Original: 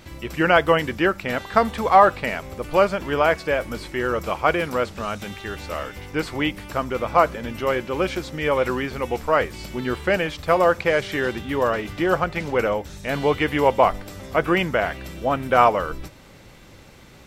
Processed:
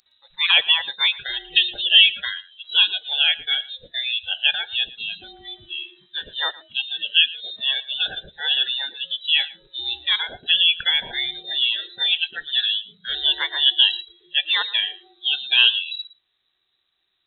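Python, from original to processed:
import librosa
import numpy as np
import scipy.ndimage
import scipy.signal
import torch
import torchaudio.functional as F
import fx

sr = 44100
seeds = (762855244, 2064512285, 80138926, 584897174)

y = fx.freq_invert(x, sr, carrier_hz=3900)
y = fx.noise_reduce_blind(y, sr, reduce_db=26)
y = y + 10.0 ** (-19.5 / 20.0) * np.pad(y, (int(114 * sr / 1000.0), 0))[:len(y)]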